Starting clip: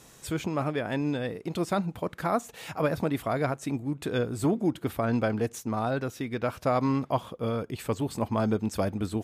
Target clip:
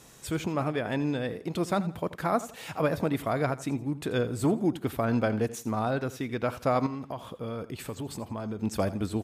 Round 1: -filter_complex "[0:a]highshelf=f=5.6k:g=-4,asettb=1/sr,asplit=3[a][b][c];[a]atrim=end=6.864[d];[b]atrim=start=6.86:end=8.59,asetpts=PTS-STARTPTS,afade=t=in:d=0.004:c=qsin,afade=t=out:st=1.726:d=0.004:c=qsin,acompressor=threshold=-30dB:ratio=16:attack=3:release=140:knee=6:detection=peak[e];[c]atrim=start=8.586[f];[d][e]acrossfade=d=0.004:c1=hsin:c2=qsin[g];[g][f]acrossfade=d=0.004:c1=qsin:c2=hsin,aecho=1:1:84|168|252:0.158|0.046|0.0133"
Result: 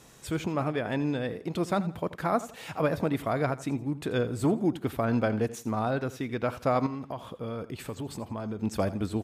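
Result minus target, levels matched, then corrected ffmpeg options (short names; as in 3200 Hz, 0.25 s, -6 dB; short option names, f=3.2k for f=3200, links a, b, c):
8000 Hz band -2.5 dB
-filter_complex "[0:a]asettb=1/sr,asplit=3[a][b][c];[a]atrim=end=6.864[d];[b]atrim=start=6.86:end=8.59,asetpts=PTS-STARTPTS,afade=t=in:d=0.004:c=qsin,afade=t=out:st=1.726:d=0.004:c=qsin,acompressor=threshold=-30dB:ratio=16:attack=3:release=140:knee=6:detection=peak[e];[c]atrim=start=8.586[f];[d][e]acrossfade=d=0.004:c1=hsin:c2=qsin[g];[g][f]acrossfade=d=0.004:c1=qsin:c2=hsin,aecho=1:1:84|168|252:0.158|0.046|0.0133"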